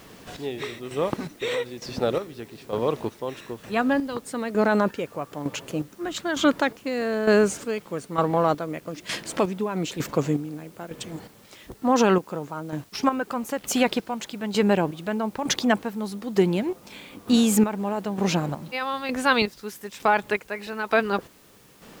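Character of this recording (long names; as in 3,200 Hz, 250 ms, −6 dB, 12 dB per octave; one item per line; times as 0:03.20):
chopped level 1.1 Hz, depth 65%, duty 40%
a quantiser's noise floor 10 bits, dither triangular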